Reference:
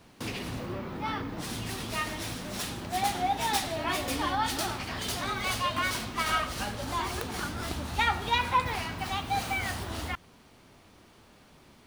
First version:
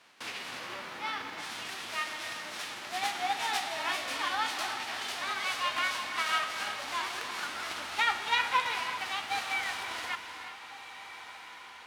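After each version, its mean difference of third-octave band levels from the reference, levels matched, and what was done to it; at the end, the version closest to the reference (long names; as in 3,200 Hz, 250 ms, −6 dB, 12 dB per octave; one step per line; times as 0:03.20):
7.5 dB: spectral envelope flattened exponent 0.6
resonant band-pass 1,900 Hz, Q 0.64
feedback delay with all-pass diffusion 1,510 ms, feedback 52%, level −14 dB
reverb whose tail is shaped and stops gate 400 ms rising, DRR 8 dB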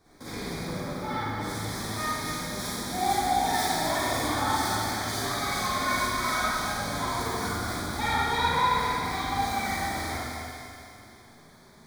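5.0 dB: flanger 0.33 Hz, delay 2.5 ms, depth 8.2 ms, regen +39%
Butterworth band-reject 2,800 Hz, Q 2.7
on a send: feedback echo with a high-pass in the loop 248 ms, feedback 52%, high-pass 830 Hz, level −6.5 dB
on the sum: four-comb reverb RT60 2.1 s, DRR −10 dB
level −3.5 dB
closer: second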